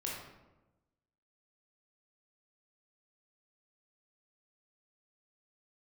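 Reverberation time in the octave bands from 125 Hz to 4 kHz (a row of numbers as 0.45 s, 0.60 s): 1.3 s, 1.3 s, 1.1 s, 1.0 s, 0.80 s, 0.60 s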